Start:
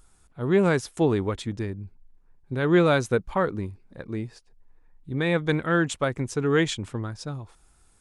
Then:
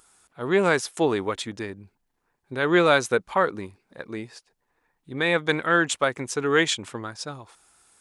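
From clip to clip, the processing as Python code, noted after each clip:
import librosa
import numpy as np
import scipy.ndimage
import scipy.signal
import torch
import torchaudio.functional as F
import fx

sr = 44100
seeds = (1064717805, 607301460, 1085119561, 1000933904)

y = fx.highpass(x, sr, hz=680.0, slope=6)
y = F.gain(torch.from_numpy(y), 6.0).numpy()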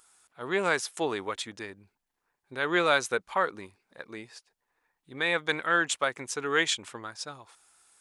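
y = fx.low_shelf(x, sr, hz=470.0, db=-10.0)
y = F.gain(torch.from_numpy(y), -2.5).numpy()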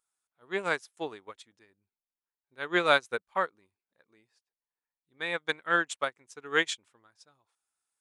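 y = fx.upward_expand(x, sr, threshold_db=-38.0, expansion=2.5)
y = F.gain(torch.from_numpy(y), 2.5).numpy()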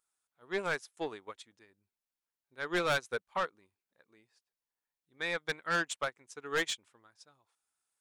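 y = 10.0 ** (-25.0 / 20.0) * np.tanh(x / 10.0 ** (-25.0 / 20.0))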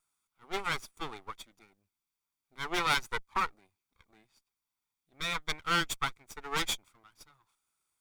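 y = fx.lower_of_two(x, sr, delay_ms=0.86)
y = F.gain(torch.from_numpy(y), 4.5).numpy()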